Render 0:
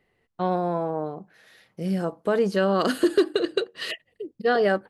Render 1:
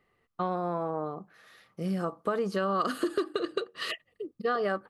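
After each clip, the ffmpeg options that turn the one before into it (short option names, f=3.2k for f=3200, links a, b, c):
-af "equalizer=f=1.2k:w=6.9:g=15,acompressor=threshold=-24dB:ratio=3,volume=-3dB"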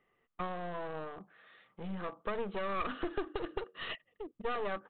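-af "equalizer=f=75:t=o:w=1.5:g=-9.5,aresample=8000,aeval=exprs='clip(val(0),-1,0.00891)':c=same,aresample=44100,volume=-3dB"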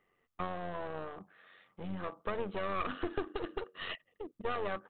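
-af "tremolo=f=92:d=0.462,volume=2dB"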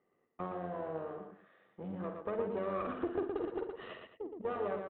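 -filter_complex "[0:a]bandpass=f=350:t=q:w=0.66:csg=0,asplit=2[a][b];[b]aecho=0:1:50|118|219:0.376|0.562|0.188[c];[a][c]amix=inputs=2:normalize=0,volume=1.5dB"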